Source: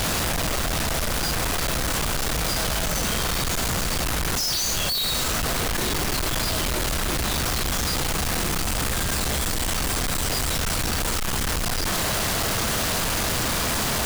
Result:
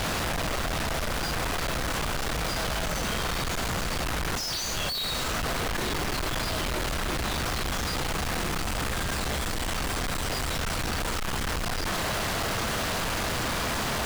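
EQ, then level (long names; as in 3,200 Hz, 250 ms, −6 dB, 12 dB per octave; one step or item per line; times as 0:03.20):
low-shelf EQ 490 Hz −3.5 dB
high-shelf EQ 4,700 Hz −10.5 dB
−1.0 dB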